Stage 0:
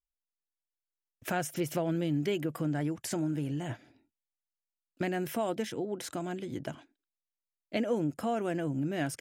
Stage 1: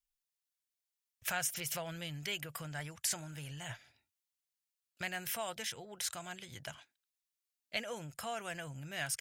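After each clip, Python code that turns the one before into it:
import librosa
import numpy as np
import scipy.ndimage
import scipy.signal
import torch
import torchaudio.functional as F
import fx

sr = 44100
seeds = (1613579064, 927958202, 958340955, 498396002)

y = fx.tone_stack(x, sr, knobs='10-0-10')
y = y * 10.0 ** (5.5 / 20.0)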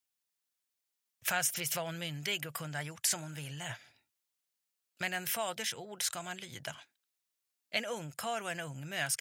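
y = scipy.signal.sosfilt(scipy.signal.butter(2, 120.0, 'highpass', fs=sr, output='sos'), x)
y = y * 10.0 ** (4.0 / 20.0)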